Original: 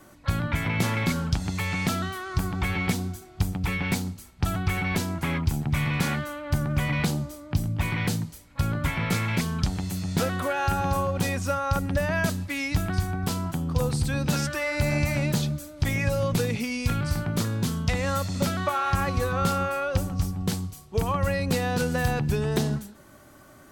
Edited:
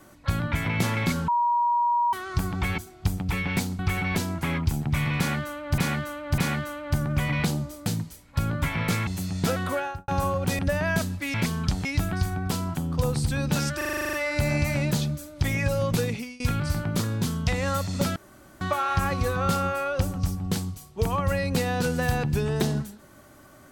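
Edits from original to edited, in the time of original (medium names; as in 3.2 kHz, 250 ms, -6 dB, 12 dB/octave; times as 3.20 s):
1.28–2.13 s: bleep 955 Hz -19.5 dBFS
2.78–3.13 s: delete
4.14–4.59 s: delete
5.98–6.58 s: loop, 3 plays
7.46–8.08 s: delete
9.29–9.80 s: move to 12.62 s
10.47–10.81 s: studio fade out
11.32–11.87 s: delete
14.54 s: stutter 0.04 s, 10 plays
16.46–16.81 s: fade out, to -23.5 dB
18.57 s: insert room tone 0.45 s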